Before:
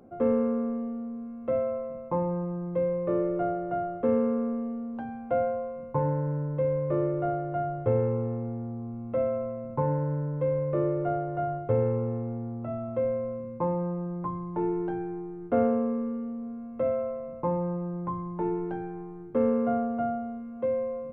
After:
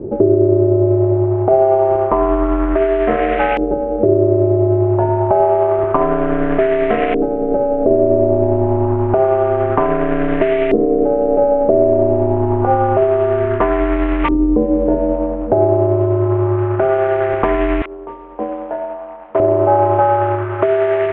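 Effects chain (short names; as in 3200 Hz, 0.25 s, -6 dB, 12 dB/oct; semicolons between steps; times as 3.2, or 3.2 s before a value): CVSD 16 kbps; notches 50/100/150/200/250/300/350 Hz; HPF 150 Hz 12 dB/oct, from 17.82 s 1100 Hz, from 19.4 s 330 Hz; dynamic EQ 990 Hz, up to -5 dB, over -48 dBFS, Q 1.7; compressor 12:1, threshold -37 dBFS, peak gain reduction 16.5 dB; ring modulator 130 Hz; LFO low-pass saw up 0.28 Hz 360–2200 Hz; tremolo triangle 10 Hz, depth 30%; maximiser +30 dB; gain -1 dB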